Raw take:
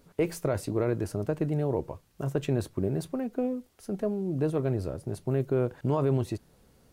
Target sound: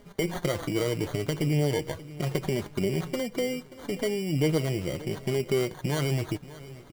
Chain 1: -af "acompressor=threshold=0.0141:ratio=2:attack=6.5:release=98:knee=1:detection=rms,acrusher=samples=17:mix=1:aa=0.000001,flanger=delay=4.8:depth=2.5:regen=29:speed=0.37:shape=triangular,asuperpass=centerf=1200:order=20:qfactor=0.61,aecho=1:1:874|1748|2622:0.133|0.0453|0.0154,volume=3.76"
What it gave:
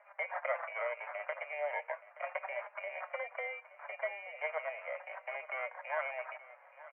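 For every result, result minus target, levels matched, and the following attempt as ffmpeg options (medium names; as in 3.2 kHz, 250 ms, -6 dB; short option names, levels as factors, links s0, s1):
1 kHz band +10.5 dB; echo 292 ms late
-af "acompressor=threshold=0.0141:ratio=2:attack=6.5:release=98:knee=1:detection=rms,acrusher=samples=17:mix=1:aa=0.000001,flanger=delay=4.8:depth=2.5:regen=29:speed=0.37:shape=triangular,aecho=1:1:874|1748|2622:0.133|0.0453|0.0154,volume=3.76"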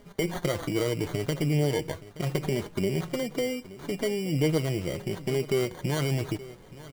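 echo 292 ms late
-af "acompressor=threshold=0.0141:ratio=2:attack=6.5:release=98:knee=1:detection=rms,acrusher=samples=17:mix=1:aa=0.000001,flanger=delay=4.8:depth=2.5:regen=29:speed=0.37:shape=triangular,aecho=1:1:582|1164|1746:0.133|0.0453|0.0154,volume=3.76"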